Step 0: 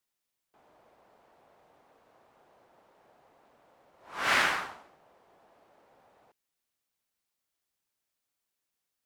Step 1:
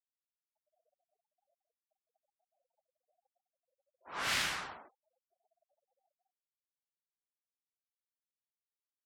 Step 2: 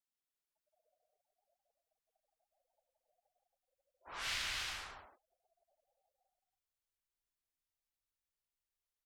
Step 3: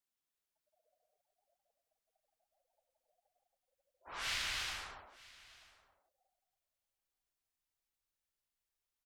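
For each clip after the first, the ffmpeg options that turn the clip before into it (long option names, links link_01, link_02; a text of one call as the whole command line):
ffmpeg -i in.wav -filter_complex "[0:a]agate=range=-10dB:threshold=-56dB:ratio=16:detection=peak,acrossover=split=180|3000[link_01][link_02][link_03];[link_02]acompressor=threshold=-37dB:ratio=6[link_04];[link_01][link_04][link_03]amix=inputs=3:normalize=0,afftfilt=real='re*gte(hypot(re,im),0.00158)':imag='im*gte(hypot(re,im),0.00158)':win_size=1024:overlap=0.75" out.wav
ffmpeg -i in.wav -filter_complex "[0:a]asubboost=boost=9.5:cutoff=63,aecho=1:1:169.1|274.1:0.562|0.447,acrossover=split=2100|6300[link_01][link_02][link_03];[link_01]acompressor=threshold=-47dB:ratio=4[link_04];[link_02]acompressor=threshold=-37dB:ratio=4[link_05];[link_03]acompressor=threshold=-53dB:ratio=4[link_06];[link_04][link_05][link_06]amix=inputs=3:normalize=0,volume=-1dB" out.wav
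ffmpeg -i in.wav -af "aecho=1:1:933:0.0841,volume=1dB" out.wav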